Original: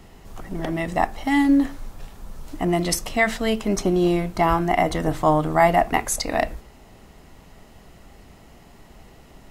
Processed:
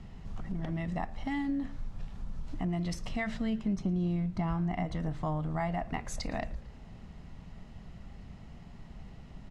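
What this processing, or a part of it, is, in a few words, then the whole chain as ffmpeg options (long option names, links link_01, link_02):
jukebox: -filter_complex "[0:a]asettb=1/sr,asplit=3[link_01][link_02][link_03];[link_01]atrim=end=3.344[link_04];[link_02]atrim=start=3.34:end=4.85,asetpts=PTS-STARTPTS,afade=type=in:duration=0.004:curve=qsin,afade=type=out:start_time=1.506:duration=0.004:curve=qsin,equalizer=frequency=190:width=1:gain=5.5[link_05];[link_03]atrim=start=4.846[link_06];[link_04][link_05]acrossfade=duration=0.004:curve1=hsin:curve2=qsin[link_07];[link_07][link_06]acrossfade=duration=0.004:curve1=qsin:curve2=hsin,lowpass=5300,lowshelf=frequency=250:width_type=q:width=1.5:gain=8,acompressor=threshold=-26dB:ratio=3,asplit=5[link_08][link_09][link_10][link_11][link_12];[link_09]adelay=112,afreqshift=-70,volume=-22.5dB[link_13];[link_10]adelay=224,afreqshift=-140,volume=-27.5dB[link_14];[link_11]adelay=336,afreqshift=-210,volume=-32.6dB[link_15];[link_12]adelay=448,afreqshift=-280,volume=-37.6dB[link_16];[link_08][link_13][link_14][link_15][link_16]amix=inputs=5:normalize=0,volume=-7dB"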